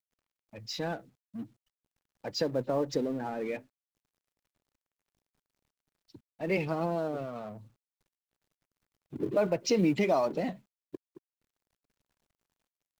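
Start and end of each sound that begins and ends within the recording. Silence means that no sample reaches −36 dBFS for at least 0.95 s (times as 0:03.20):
0:06.41–0:07.51
0:09.14–0:10.95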